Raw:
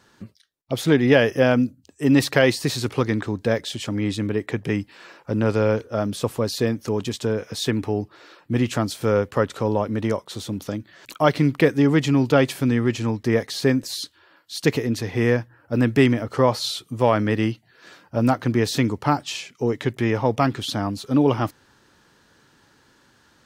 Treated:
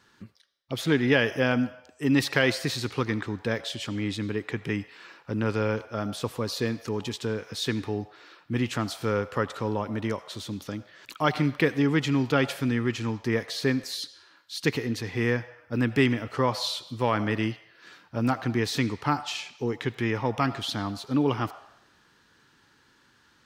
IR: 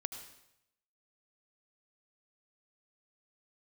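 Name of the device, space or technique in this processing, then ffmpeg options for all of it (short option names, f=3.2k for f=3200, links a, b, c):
filtered reverb send: -filter_complex "[0:a]asplit=2[a][b];[b]highpass=f=600:w=0.5412,highpass=f=600:w=1.3066,lowpass=5.6k[c];[1:a]atrim=start_sample=2205[d];[c][d]afir=irnorm=-1:irlink=0,volume=-3.5dB[e];[a][e]amix=inputs=2:normalize=0,volume=-6dB"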